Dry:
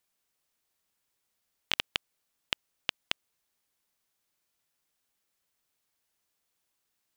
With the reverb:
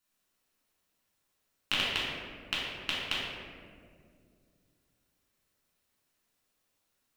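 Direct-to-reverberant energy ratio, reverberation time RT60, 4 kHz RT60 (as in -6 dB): -8.0 dB, 2.2 s, 1.0 s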